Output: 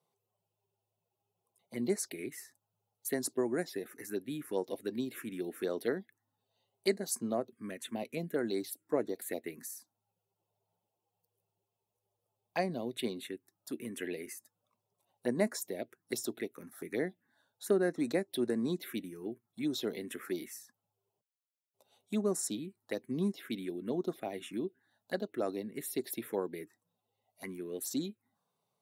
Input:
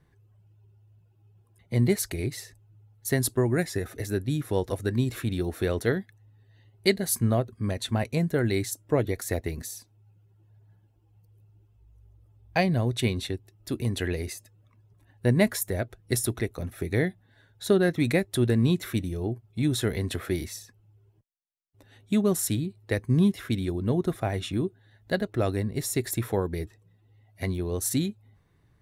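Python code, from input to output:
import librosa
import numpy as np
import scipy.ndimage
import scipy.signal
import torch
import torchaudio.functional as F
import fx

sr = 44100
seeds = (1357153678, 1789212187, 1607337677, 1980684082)

y = scipy.signal.sosfilt(scipy.signal.butter(4, 220.0, 'highpass', fs=sr, output='sos'), x)
y = fx.high_shelf(y, sr, hz=10000.0, db=4.5)
y = fx.env_phaser(y, sr, low_hz=290.0, high_hz=3300.0, full_db=-22.0)
y = y * librosa.db_to_amplitude(-6.0)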